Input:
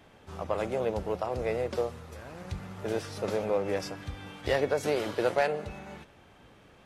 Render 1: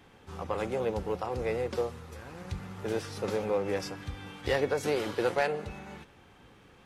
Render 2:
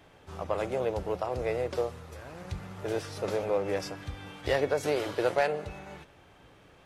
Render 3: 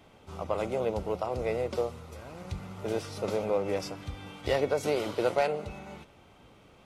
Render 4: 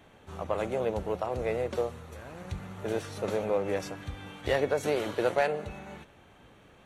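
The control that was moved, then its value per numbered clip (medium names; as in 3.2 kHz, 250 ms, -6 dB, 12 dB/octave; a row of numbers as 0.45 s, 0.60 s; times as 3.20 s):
band-stop, frequency: 630 Hz, 220 Hz, 1.7 kHz, 5 kHz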